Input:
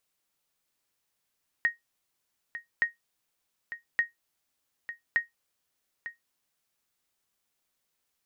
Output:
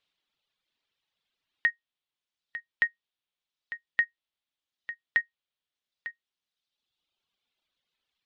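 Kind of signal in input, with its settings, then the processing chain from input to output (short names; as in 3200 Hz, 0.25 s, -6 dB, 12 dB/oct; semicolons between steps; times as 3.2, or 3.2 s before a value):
sonar ping 1870 Hz, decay 0.15 s, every 1.17 s, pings 4, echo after 0.90 s, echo -13 dB -16 dBFS
reverb removal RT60 1.7 s; synth low-pass 3500 Hz, resonance Q 2.9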